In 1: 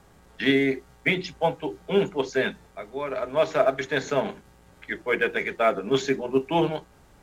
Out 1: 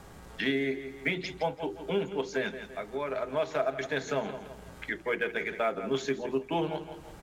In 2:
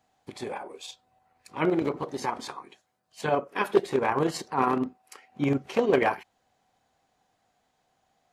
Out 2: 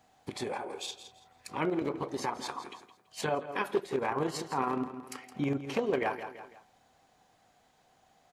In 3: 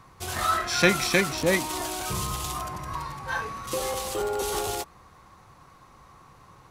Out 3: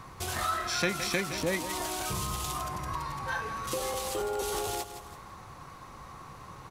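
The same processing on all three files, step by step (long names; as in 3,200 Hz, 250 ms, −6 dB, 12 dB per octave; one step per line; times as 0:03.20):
on a send: repeating echo 166 ms, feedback 26%, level −14.5 dB
on the sum: downward compressor 2 to 1, threshold −43 dBFS
level +5.5 dB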